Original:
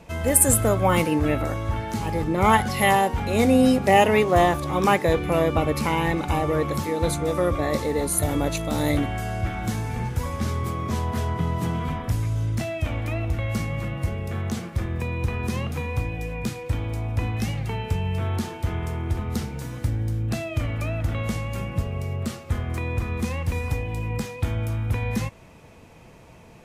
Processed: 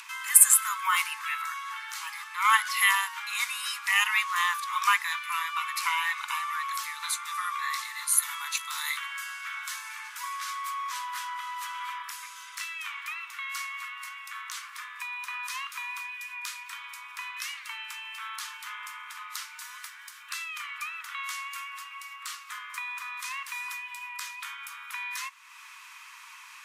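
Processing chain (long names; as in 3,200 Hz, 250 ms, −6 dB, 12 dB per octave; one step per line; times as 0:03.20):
Butterworth high-pass 990 Hz 96 dB per octave
upward compression, threshold −40 dBFS
level +1.5 dB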